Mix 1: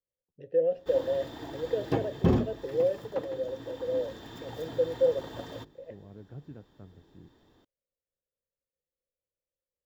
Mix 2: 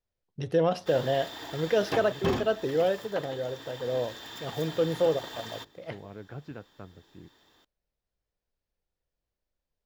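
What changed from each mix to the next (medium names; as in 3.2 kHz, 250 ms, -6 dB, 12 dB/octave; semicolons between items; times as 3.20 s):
first voice: remove vowel filter e; second voice +10.0 dB; master: add tilt shelf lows -9 dB, about 680 Hz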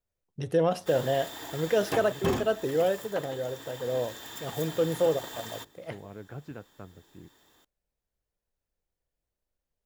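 master: add resonant high shelf 6.4 kHz +8 dB, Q 1.5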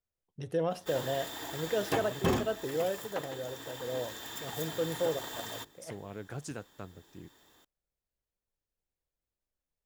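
first voice -6.5 dB; second voice: remove distance through air 410 m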